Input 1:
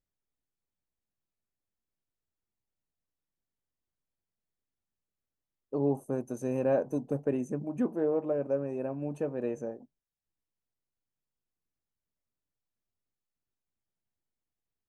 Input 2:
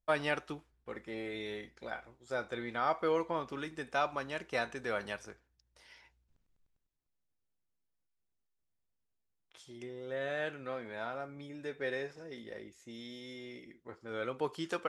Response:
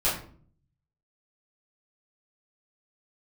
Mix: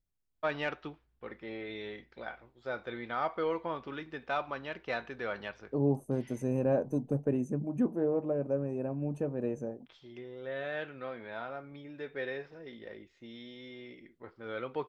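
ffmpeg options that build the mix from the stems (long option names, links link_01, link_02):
-filter_complex "[0:a]lowshelf=frequency=200:gain=11,volume=-3.5dB[link_01];[1:a]lowpass=frequency=4200:width=0.5412,lowpass=frequency=4200:width=1.3066,asoftclip=type=tanh:threshold=-18.5dB,adelay=350,volume=-0.5dB[link_02];[link_01][link_02]amix=inputs=2:normalize=0"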